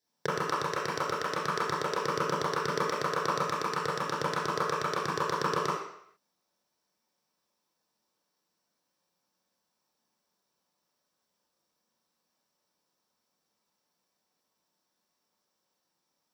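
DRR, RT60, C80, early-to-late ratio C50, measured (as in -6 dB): -8.5 dB, 0.70 s, 4.5 dB, 1.0 dB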